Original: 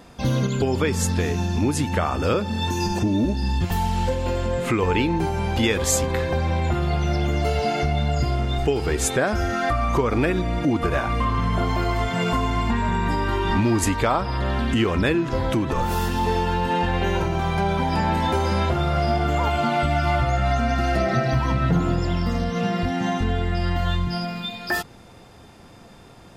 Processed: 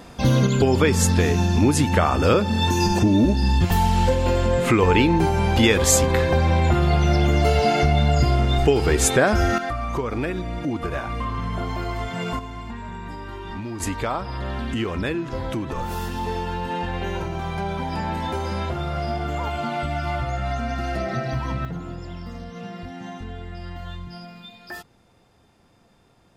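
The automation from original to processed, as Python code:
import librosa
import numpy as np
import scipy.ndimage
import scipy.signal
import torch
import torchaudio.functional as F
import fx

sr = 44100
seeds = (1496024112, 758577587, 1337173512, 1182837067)

y = fx.gain(x, sr, db=fx.steps((0.0, 4.0), (9.58, -5.0), (12.39, -12.0), (13.8, -5.0), (21.65, -12.0)))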